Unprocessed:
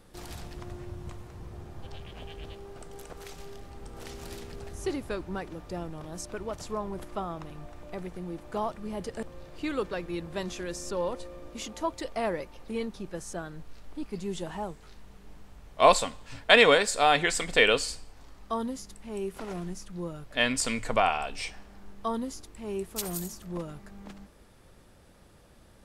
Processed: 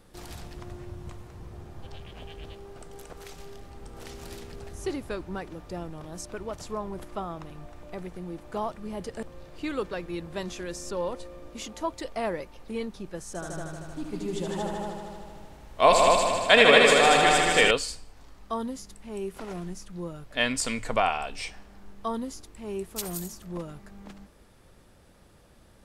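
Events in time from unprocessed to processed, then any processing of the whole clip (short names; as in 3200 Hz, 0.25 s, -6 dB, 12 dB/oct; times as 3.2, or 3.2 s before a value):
13.27–17.71 multi-head echo 77 ms, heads all three, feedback 59%, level -6 dB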